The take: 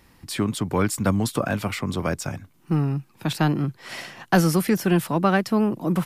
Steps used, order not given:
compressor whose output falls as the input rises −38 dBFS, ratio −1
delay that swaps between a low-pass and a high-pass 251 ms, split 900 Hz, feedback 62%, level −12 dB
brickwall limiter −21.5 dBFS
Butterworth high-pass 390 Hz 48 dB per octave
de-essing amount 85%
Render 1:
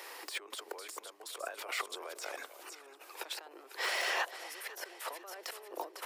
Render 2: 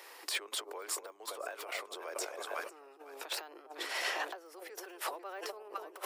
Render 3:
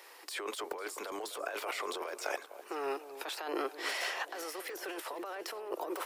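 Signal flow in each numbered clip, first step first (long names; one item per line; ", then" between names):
compressor whose output falls as the input rises, then brickwall limiter, then delay that swaps between a low-pass and a high-pass, then de-essing, then Butterworth high-pass
delay that swaps between a low-pass and a high-pass, then de-essing, then brickwall limiter, then compressor whose output falls as the input rises, then Butterworth high-pass
Butterworth high-pass, then brickwall limiter, then compressor whose output falls as the input rises, then de-essing, then delay that swaps between a low-pass and a high-pass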